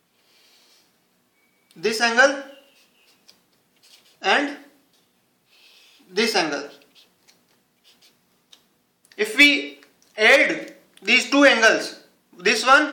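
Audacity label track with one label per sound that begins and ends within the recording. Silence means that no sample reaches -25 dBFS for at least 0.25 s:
1.850000	2.400000	sound
4.240000	4.520000	sound
6.170000	6.610000	sound
9.190000	9.660000	sound
10.180000	10.680000	sound
11.080000	11.880000	sound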